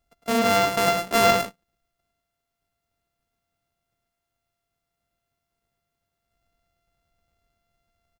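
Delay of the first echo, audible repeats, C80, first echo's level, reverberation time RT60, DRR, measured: 106 ms, 1, no reverb, -5.0 dB, no reverb, no reverb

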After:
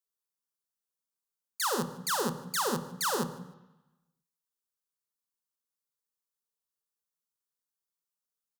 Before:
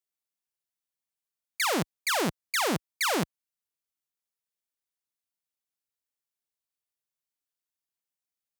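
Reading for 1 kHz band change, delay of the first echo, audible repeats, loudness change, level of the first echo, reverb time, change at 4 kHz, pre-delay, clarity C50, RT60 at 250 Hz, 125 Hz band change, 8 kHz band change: -1.5 dB, 152 ms, 2, -3.0 dB, -21.5 dB, 1.0 s, -4.5 dB, 3 ms, 13.5 dB, 1.0 s, -2.5 dB, -1.0 dB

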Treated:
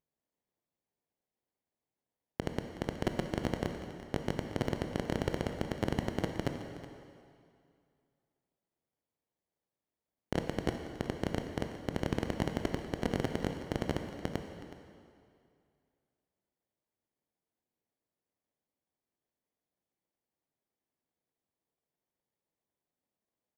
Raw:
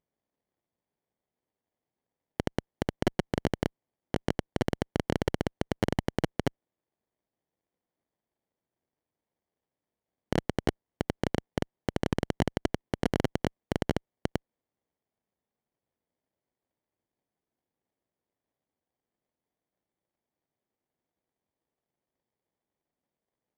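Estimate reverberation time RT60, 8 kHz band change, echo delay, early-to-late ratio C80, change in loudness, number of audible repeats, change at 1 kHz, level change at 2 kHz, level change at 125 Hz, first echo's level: 2.3 s, -4.0 dB, 370 ms, 6.0 dB, -4.0 dB, 1, -4.0 dB, -4.0 dB, -4.0 dB, -14.5 dB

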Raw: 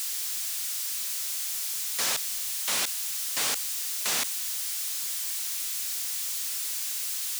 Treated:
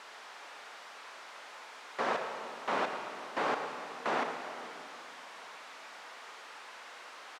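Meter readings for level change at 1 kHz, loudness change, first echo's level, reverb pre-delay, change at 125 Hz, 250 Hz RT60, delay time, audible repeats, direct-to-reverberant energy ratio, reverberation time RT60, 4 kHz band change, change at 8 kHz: +7.0 dB, -11.5 dB, -12.0 dB, 31 ms, -1.0 dB, 3.1 s, 109 ms, 1, 4.0 dB, 2.9 s, -15.5 dB, -28.5 dB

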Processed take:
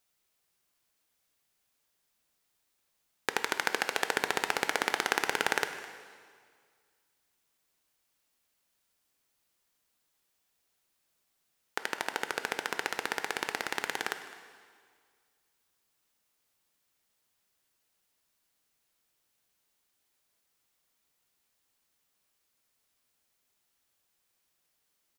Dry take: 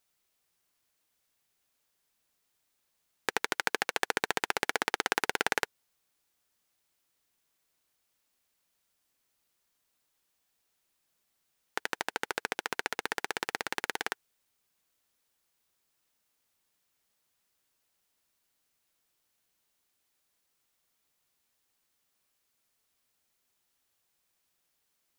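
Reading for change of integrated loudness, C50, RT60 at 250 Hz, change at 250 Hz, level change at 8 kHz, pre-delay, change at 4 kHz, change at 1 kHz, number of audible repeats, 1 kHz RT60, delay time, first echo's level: +0.5 dB, 9.5 dB, 1.9 s, +0.5 dB, +0.5 dB, 7 ms, +0.5 dB, +0.5 dB, 1, 1.9 s, 209 ms, -19.0 dB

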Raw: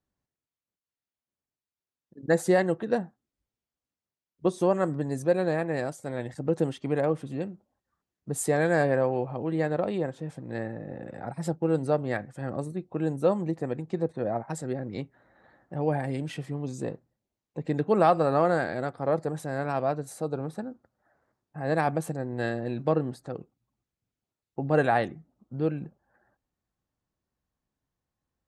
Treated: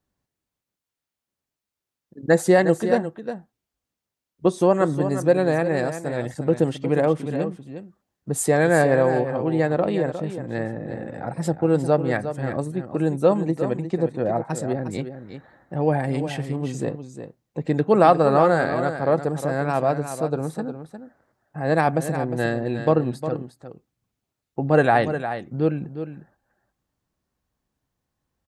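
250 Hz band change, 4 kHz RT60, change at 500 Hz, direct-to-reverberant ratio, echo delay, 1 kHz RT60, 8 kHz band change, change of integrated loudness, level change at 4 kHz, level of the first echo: +6.5 dB, no reverb, +6.5 dB, no reverb, 357 ms, no reverb, +6.5 dB, +6.0 dB, +6.5 dB, -10.0 dB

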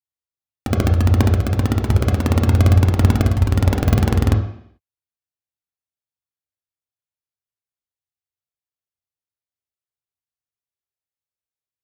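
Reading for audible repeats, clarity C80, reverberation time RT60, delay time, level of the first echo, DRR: no echo, 11.5 dB, 0.65 s, no echo, no echo, 4.0 dB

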